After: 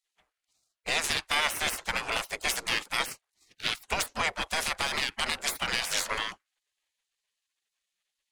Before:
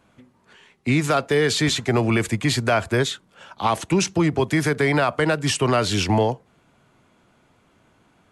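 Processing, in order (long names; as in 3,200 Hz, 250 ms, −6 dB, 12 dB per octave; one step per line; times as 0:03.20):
power curve on the samples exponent 1.4
gate on every frequency bin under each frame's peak −20 dB weak
level +7 dB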